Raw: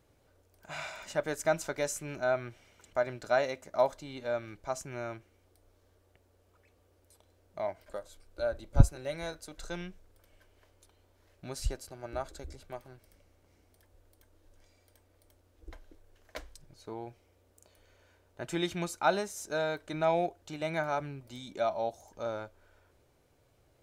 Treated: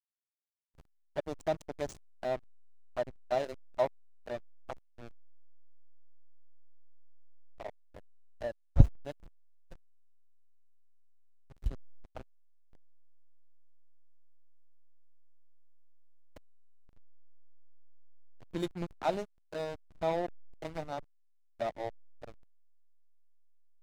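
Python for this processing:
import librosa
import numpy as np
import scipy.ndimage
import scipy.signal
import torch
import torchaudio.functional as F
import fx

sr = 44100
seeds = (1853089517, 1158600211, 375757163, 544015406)

y = fx.env_flanger(x, sr, rest_ms=11.4, full_db=-29.0)
y = fx.backlash(y, sr, play_db=-28.0)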